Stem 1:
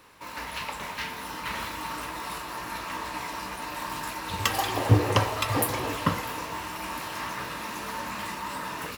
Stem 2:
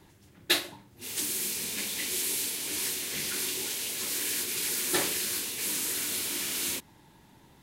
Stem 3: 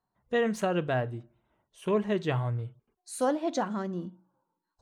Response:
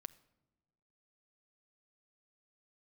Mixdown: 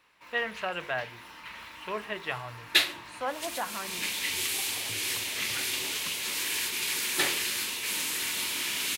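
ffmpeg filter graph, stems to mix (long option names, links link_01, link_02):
-filter_complex "[0:a]acompressor=threshold=-29dB:ratio=6,volume=-15.5dB[link_01];[1:a]adelay=2250,volume=-3.5dB[link_02];[2:a]acrossover=split=580 3500:gain=0.224 1 0.224[link_03][link_04][link_05];[link_03][link_04][link_05]amix=inputs=3:normalize=0,volume=-3dB,asplit=2[link_06][link_07];[link_07]apad=whole_len=435455[link_08];[link_02][link_08]sidechaincompress=threshold=-42dB:ratio=8:attack=26:release=287[link_09];[link_01][link_09][link_06]amix=inputs=3:normalize=0,equalizer=frequency=2500:width_type=o:width=1.8:gain=9.5,bandreject=frequency=49.53:width_type=h:width=4,bandreject=frequency=99.06:width_type=h:width=4,bandreject=frequency=148.59:width_type=h:width=4,bandreject=frequency=198.12:width_type=h:width=4,bandreject=frequency=247.65:width_type=h:width=4,bandreject=frequency=297.18:width_type=h:width=4,bandreject=frequency=346.71:width_type=h:width=4,bandreject=frequency=396.24:width_type=h:width=4,bandreject=frequency=445.77:width_type=h:width=4,bandreject=frequency=495.3:width_type=h:width=4"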